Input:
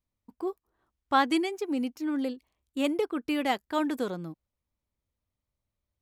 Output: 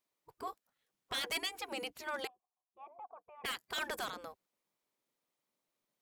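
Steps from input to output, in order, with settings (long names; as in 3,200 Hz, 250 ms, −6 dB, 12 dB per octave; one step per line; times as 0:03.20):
gate on every frequency bin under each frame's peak −15 dB weak
brickwall limiter −28 dBFS, peak gain reduction 7 dB
0:02.27–0:03.44: formant resonators in series a
wave folding −33 dBFS
level +4.5 dB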